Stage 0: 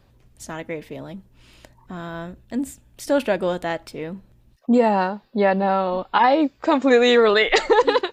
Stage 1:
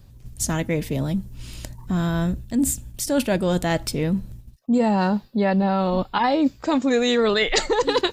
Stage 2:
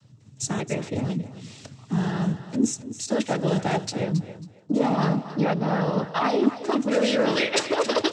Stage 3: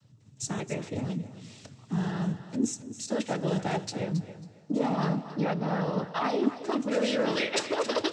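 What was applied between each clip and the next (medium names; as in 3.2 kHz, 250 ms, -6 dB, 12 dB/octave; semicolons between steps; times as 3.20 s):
gate -53 dBFS, range -7 dB; tone controls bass +13 dB, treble +12 dB; reverse; compression 6:1, threshold -22 dBFS, peak gain reduction 14.5 dB; reverse; trim +4.5 dB
noise-vocoded speech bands 12; thinning echo 272 ms, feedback 23%, high-pass 190 Hz, level -12.5 dB; trim -2.5 dB
two-slope reverb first 0.24 s, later 3.8 s, from -18 dB, DRR 16 dB; trim -5.5 dB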